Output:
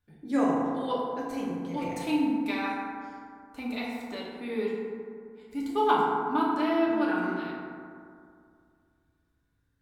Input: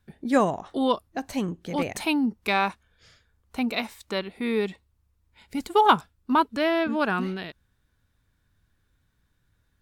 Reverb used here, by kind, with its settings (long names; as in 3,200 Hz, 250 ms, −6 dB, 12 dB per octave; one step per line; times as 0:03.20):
feedback delay network reverb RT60 2.3 s, low-frequency decay 1.05×, high-frequency decay 0.35×, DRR −6 dB
level −12.5 dB